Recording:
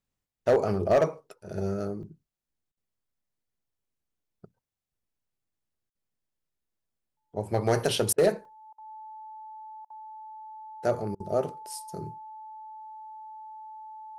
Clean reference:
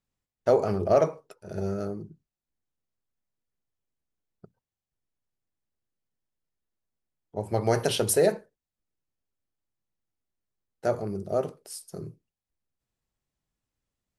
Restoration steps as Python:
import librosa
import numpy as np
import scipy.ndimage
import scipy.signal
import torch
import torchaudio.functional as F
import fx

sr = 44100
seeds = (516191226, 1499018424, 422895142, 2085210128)

y = fx.fix_declip(x, sr, threshold_db=-15.0)
y = fx.notch(y, sr, hz=870.0, q=30.0)
y = fx.fix_interpolate(y, sr, at_s=(2.03, 5.03, 8.45), length_ms=2.9)
y = fx.fix_interpolate(y, sr, at_s=(2.72, 5.9, 8.13, 8.73, 9.85, 11.15), length_ms=50.0)